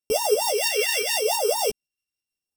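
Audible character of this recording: a buzz of ramps at a fixed pitch in blocks of 16 samples; phasing stages 2, 0.85 Hz, lowest notch 800–2000 Hz; tremolo saw up 5.9 Hz, depth 45%; a shimmering, thickened sound

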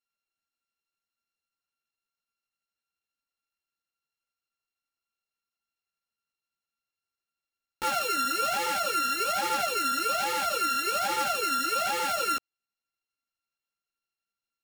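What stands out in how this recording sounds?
a buzz of ramps at a fixed pitch in blocks of 32 samples; chopped level 12 Hz, depth 65%, duty 90%; a shimmering, thickened sound

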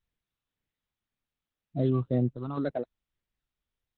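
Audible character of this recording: a buzz of ramps at a fixed pitch in blocks of 8 samples; phasing stages 8, 1.9 Hz, lowest notch 550–1100 Hz; random-step tremolo 3.5 Hz, depth 55%; Opus

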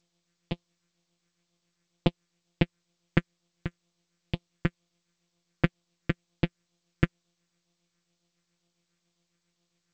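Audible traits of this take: a buzz of ramps at a fixed pitch in blocks of 256 samples; tremolo triangle 7.3 Hz, depth 80%; phasing stages 4, 2.1 Hz, lowest notch 800–1600 Hz; G.722

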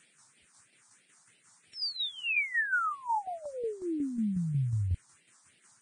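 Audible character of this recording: a quantiser's noise floor 10-bit, dither triangular; tremolo saw down 5.5 Hz, depth 55%; phasing stages 4, 3.1 Hz, lowest notch 440–1100 Hz; Vorbis

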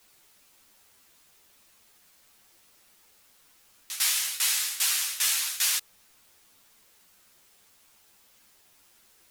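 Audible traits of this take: tremolo saw down 2.5 Hz, depth 90%; a quantiser's noise floor 10-bit, dither triangular; a shimmering, thickened sound

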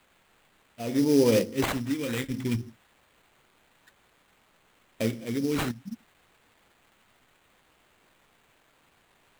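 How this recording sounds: tremolo triangle 0.88 Hz, depth 75%; a quantiser's noise floor 12-bit, dither triangular; phasing stages 2, 0.27 Hz, lowest notch 600–1500 Hz; aliases and images of a low sample rate 5.5 kHz, jitter 20%

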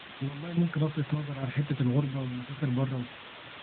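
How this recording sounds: random-step tremolo 3.5 Hz, depth 95%; a quantiser's noise floor 6-bit, dither triangular; AMR-NB

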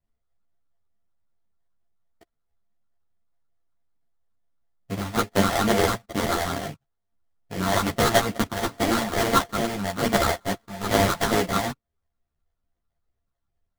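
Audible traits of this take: a buzz of ramps at a fixed pitch in blocks of 64 samples; phasing stages 8, 2.3 Hz, lowest notch 380–2100 Hz; aliases and images of a low sample rate 2.6 kHz, jitter 20%; a shimmering, thickened sound

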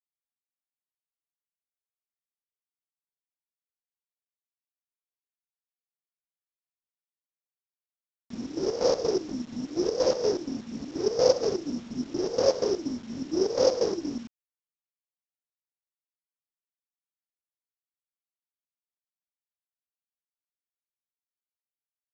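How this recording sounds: a buzz of ramps at a fixed pitch in blocks of 8 samples; chopped level 4.2 Hz, depth 65%, duty 55%; a quantiser's noise floor 8-bit, dither none; µ-law

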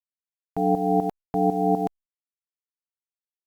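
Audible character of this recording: tremolo saw up 4 Hz, depth 75%; a quantiser's noise floor 10-bit, dither none; Opus

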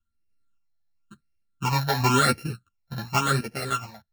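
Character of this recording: a buzz of ramps at a fixed pitch in blocks of 32 samples; phasing stages 8, 0.93 Hz, lowest notch 350–1100 Hz; random-step tremolo; a shimmering, thickened sound

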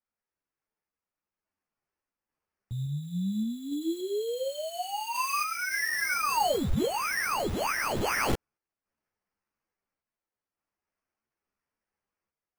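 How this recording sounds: random-step tremolo; aliases and images of a low sample rate 3.7 kHz, jitter 0%; a shimmering, thickened sound

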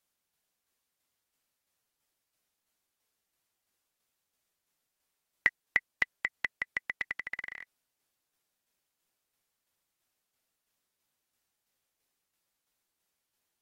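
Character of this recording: tremolo saw down 3 Hz, depth 40%; AAC

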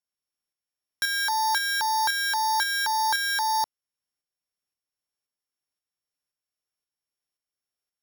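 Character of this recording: a buzz of ramps at a fixed pitch in blocks of 8 samples; tremolo saw up 1.9 Hz, depth 45%

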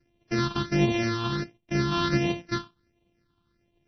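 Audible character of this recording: a buzz of ramps at a fixed pitch in blocks of 128 samples; phasing stages 6, 1.4 Hz, lowest notch 550–1400 Hz; MP3

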